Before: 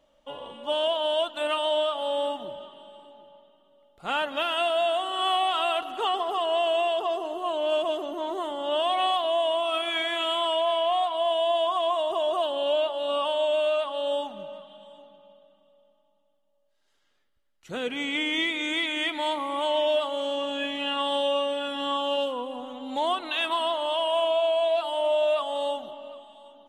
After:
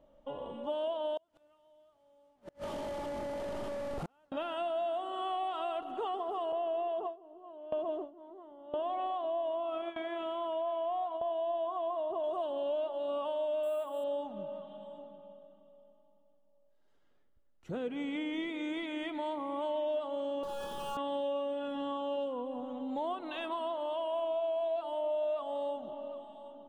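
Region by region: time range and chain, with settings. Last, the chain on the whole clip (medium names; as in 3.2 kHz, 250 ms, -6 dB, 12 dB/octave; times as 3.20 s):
1.17–4.32 s: one-bit delta coder 64 kbps, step -28 dBFS + inverted gate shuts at -24 dBFS, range -39 dB
6.52–12.24 s: gate with hold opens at -18 dBFS, closes at -25 dBFS + low-pass 2.1 kHz 6 dB/octave
13.63–14.04 s: high-pass 160 Hz + careless resampling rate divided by 4×, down filtered, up hold
20.43–20.97 s: hysteresis with a dead band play -33 dBFS + power-law waveshaper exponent 0.35 + static phaser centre 420 Hz, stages 8
whole clip: tilt shelf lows +9.5 dB, about 1.3 kHz; compression 2:1, threshold -35 dBFS; trim -4.5 dB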